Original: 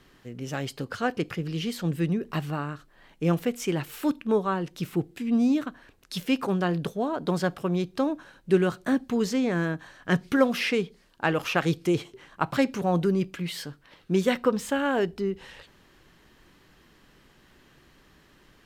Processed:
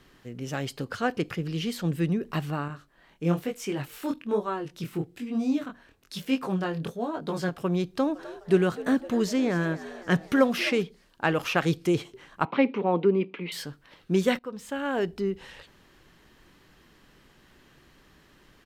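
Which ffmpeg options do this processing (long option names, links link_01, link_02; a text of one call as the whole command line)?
ffmpeg -i in.wav -filter_complex "[0:a]asettb=1/sr,asplit=3[link_01][link_02][link_03];[link_01]atrim=end=2.684[link_04];[link_02]atrim=start=2.68:end=7.58,asetpts=PTS-STARTPTS,afade=type=in:duration=0.004:curve=qsin,afade=type=out:start_time=4.896:duration=0.004:curve=qsin,flanger=delay=18.5:depth=6.8:speed=1.1[link_05];[link_03]atrim=start=7.576[link_06];[link_04][link_05]acrossfade=duration=0.004:curve1=hsin:curve2=qsin[link_07];[link_07][link_06]acrossfade=duration=0.004:curve1=qsin:curve2=hsin,asplit=3[link_08][link_09][link_10];[link_08]afade=type=out:start_time=8.12:duration=0.02[link_11];[link_09]asplit=6[link_12][link_13][link_14][link_15][link_16][link_17];[link_13]adelay=255,afreqshift=78,volume=-16dB[link_18];[link_14]adelay=510,afreqshift=156,volume=-21dB[link_19];[link_15]adelay=765,afreqshift=234,volume=-26.1dB[link_20];[link_16]adelay=1020,afreqshift=312,volume=-31.1dB[link_21];[link_17]adelay=1275,afreqshift=390,volume=-36.1dB[link_22];[link_12][link_18][link_19][link_20][link_21][link_22]amix=inputs=6:normalize=0,afade=type=in:start_time=8.12:duration=0.02,afade=type=out:start_time=10.82:duration=0.02[link_23];[link_10]afade=type=in:start_time=10.82:duration=0.02[link_24];[link_11][link_23][link_24]amix=inputs=3:normalize=0,asettb=1/sr,asplit=3[link_25][link_26][link_27];[link_25]atrim=end=12.454[link_28];[link_26]atrim=start=12.45:end=13.52,asetpts=PTS-STARTPTS,afade=type=in:duration=0.004:curve=qsin,afade=type=out:start_time=1.066:duration=0.004:curve=qsin,highpass=frequency=210:width=0.5412,highpass=frequency=210:width=1.3066,equalizer=frequency=220:width_type=q:width=4:gain=4,equalizer=frequency=440:width_type=q:width=4:gain=8,equalizer=frequency=650:width_type=q:width=4:gain=-4,equalizer=frequency=930:width_type=q:width=4:gain=5,equalizer=frequency=1600:width_type=q:width=4:gain=-8,equalizer=frequency=2300:width_type=q:width=4:gain=5,lowpass=frequency=3200:width=0.5412,lowpass=frequency=3200:width=1.3066[link_29];[link_27]atrim=start=13.516[link_30];[link_28][link_29]acrossfade=duration=0.004:curve1=hsin:curve2=qsin[link_31];[link_31][link_30]acrossfade=duration=0.004:curve1=qsin:curve2=hsin,asplit=2[link_32][link_33];[link_32]atrim=end=14.39,asetpts=PTS-STARTPTS,afade=type=out:start_time=14.386:duration=0.004:curve=hsin:silence=0.0944061[link_34];[link_33]atrim=start=14.39,asetpts=PTS-STARTPTS,afade=type=in:duration=0.8:silence=0.0944061[link_35];[link_34][link_35]concat=n=2:v=0:a=1" out.wav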